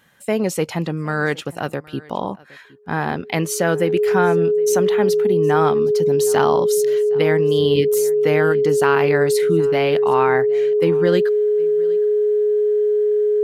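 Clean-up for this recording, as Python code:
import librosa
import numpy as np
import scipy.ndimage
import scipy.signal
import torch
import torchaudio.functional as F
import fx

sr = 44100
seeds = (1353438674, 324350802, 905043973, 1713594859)

y = fx.notch(x, sr, hz=420.0, q=30.0)
y = fx.fix_echo_inverse(y, sr, delay_ms=765, level_db=-23.0)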